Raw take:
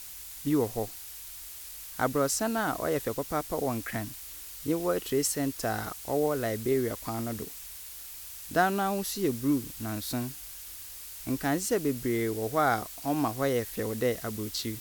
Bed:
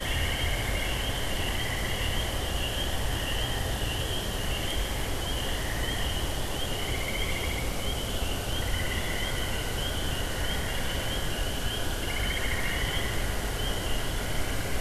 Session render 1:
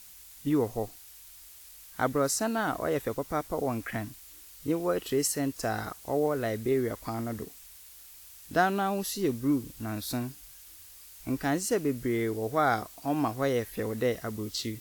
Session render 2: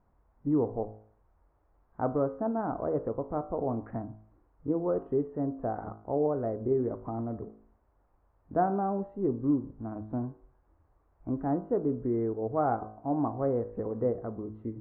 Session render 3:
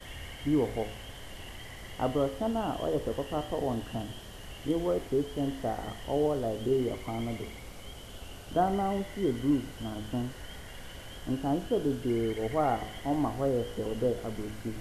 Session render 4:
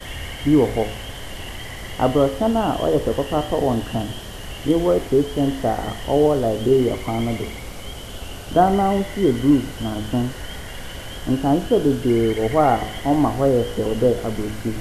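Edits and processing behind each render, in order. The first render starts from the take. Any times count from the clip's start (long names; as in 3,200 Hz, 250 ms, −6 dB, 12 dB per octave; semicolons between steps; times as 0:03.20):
noise reduction from a noise print 7 dB
inverse Chebyshev low-pass filter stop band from 4,400 Hz, stop band 70 dB; hum removal 53.81 Hz, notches 30
mix in bed −14.5 dB
level +11.5 dB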